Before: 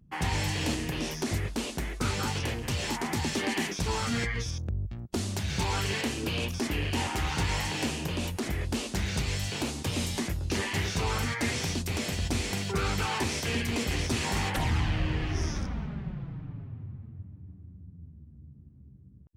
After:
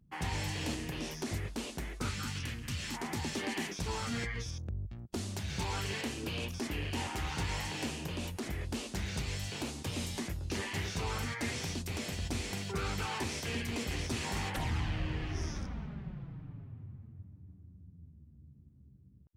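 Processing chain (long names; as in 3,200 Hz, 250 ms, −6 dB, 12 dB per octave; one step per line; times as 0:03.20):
0:02.09–0:02.94: flat-topped bell 580 Hz −11 dB
level −6.5 dB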